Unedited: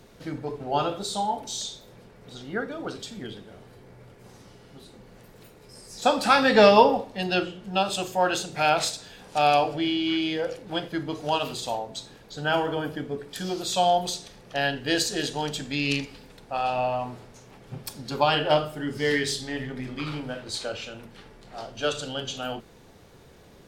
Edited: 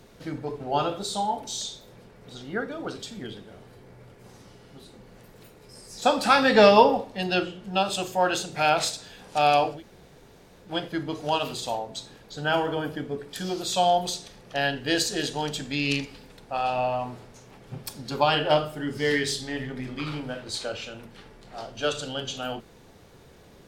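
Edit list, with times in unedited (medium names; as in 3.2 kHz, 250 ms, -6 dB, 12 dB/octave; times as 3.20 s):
9.75–10.67 s: room tone, crossfade 0.16 s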